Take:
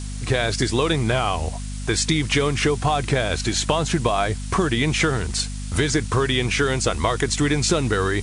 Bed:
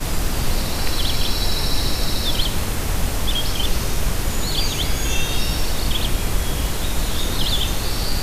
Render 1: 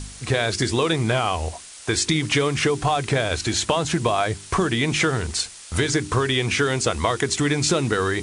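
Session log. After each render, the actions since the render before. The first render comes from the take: de-hum 50 Hz, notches 8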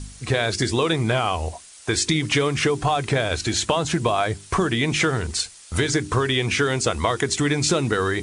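noise reduction 6 dB, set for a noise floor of -41 dBFS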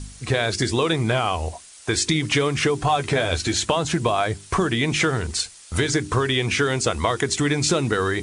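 2.88–3.53 s: doubling 12 ms -6.5 dB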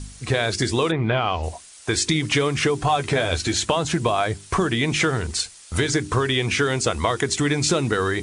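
0.90–1.42 s: low-pass 2.4 kHz -> 5.7 kHz 24 dB/octave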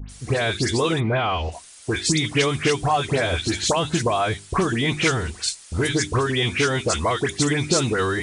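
phase dispersion highs, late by 97 ms, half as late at 2.2 kHz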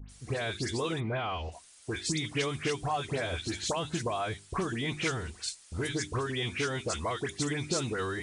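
trim -11 dB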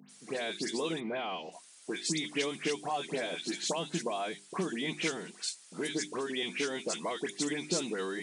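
dynamic bell 1.3 kHz, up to -7 dB, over -50 dBFS, Q 2.2; Chebyshev high-pass 170 Hz, order 5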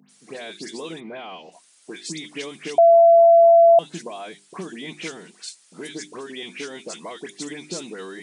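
2.78–3.79 s: bleep 674 Hz -8.5 dBFS

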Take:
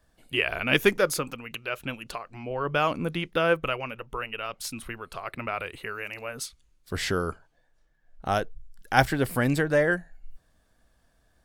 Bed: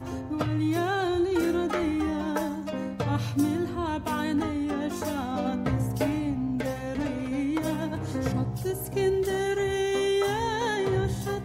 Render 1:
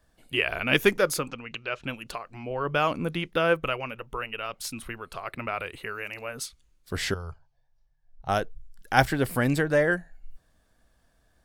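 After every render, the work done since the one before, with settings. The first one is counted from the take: 1.28–1.84 s: low-pass 6.4 kHz 24 dB/octave; 7.14–8.29 s: FFT filter 140 Hz 0 dB, 220 Hz -26 dB, 870 Hz -5 dB, 1.4 kHz -15 dB, 2.3 kHz -11 dB, 3.2 kHz -11 dB, 5.4 kHz -5 dB, 8.2 kHz -19 dB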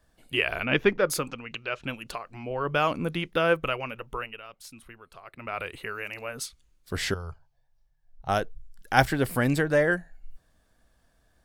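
0.65–1.10 s: distance through air 250 m; 4.17–5.61 s: dip -11 dB, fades 0.25 s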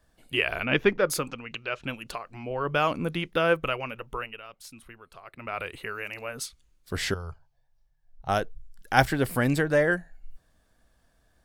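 no audible change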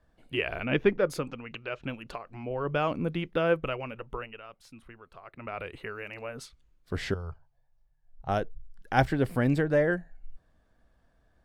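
low-pass 1.7 kHz 6 dB/octave; dynamic bell 1.2 kHz, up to -4 dB, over -40 dBFS, Q 0.91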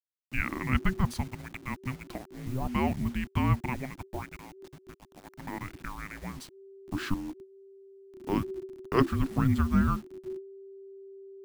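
send-on-delta sampling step -43.5 dBFS; frequency shift -390 Hz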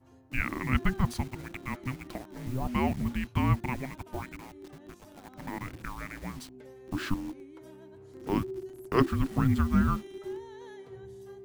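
add bed -23.5 dB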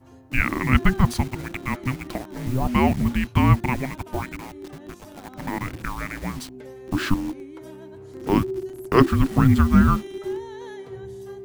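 trim +9 dB; peak limiter -2 dBFS, peak gain reduction 1 dB

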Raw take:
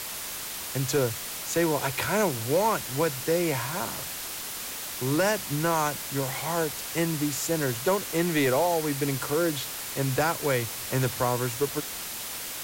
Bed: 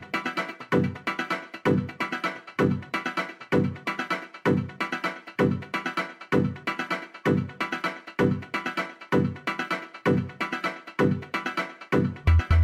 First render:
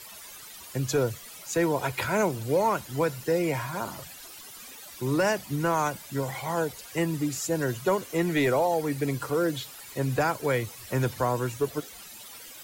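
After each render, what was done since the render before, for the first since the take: noise reduction 14 dB, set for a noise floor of -36 dBFS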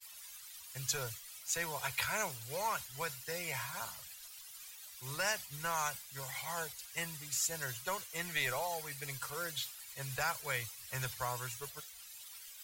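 amplifier tone stack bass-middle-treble 10-0-10; expander -40 dBFS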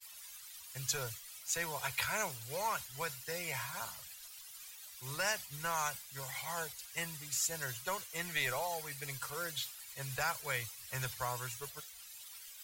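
no audible change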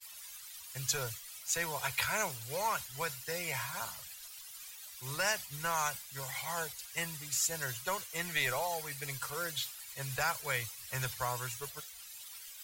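trim +2.5 dB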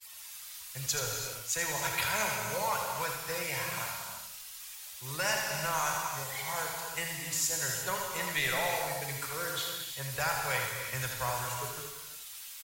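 delay 80 ms -6.5 dB; gated-style reverb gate 380 ms flat, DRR 1.5 dB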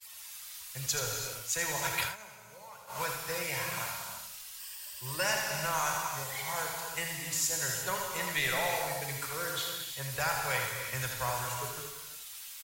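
2.02–3.01 s: dip -18 dB, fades 0.14 s; 4.58–5.24 s: rippled EQ curve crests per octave 1.3, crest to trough 9 dB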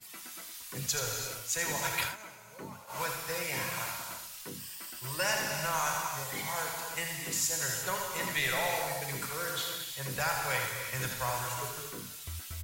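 add bed -23.5 dB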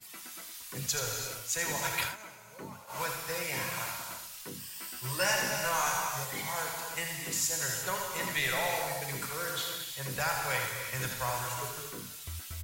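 4.74–6.25 s: doubling 16 ms -3 dB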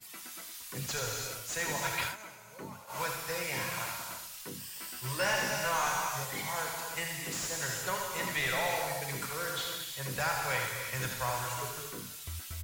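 slew-rate limiter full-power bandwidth 110 Hz

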